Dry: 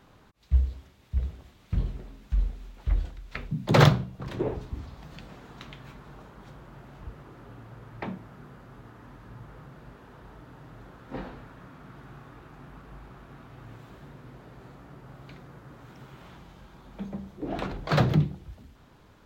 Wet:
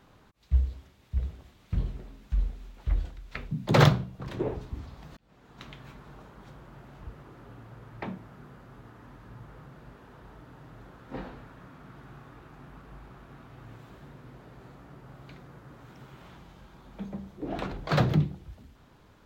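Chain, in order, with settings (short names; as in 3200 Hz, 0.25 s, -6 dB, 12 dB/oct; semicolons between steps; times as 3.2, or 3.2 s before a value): 4.95–5.59 auto swell 0.648 s; gain -1.5 dB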